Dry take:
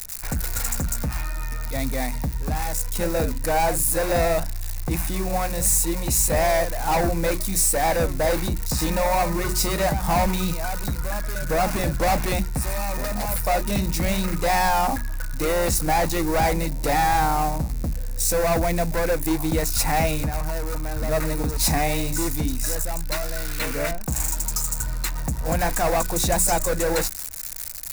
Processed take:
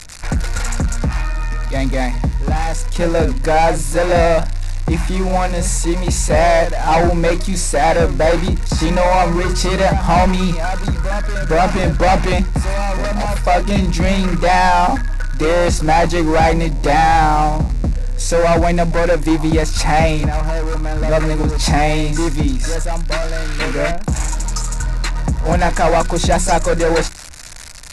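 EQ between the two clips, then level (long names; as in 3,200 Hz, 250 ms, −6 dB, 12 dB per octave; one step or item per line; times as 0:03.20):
linear-phase brick-wall low-pass 12,000 Hz
high-frequency loss of the air 90 metres
+8.5 dB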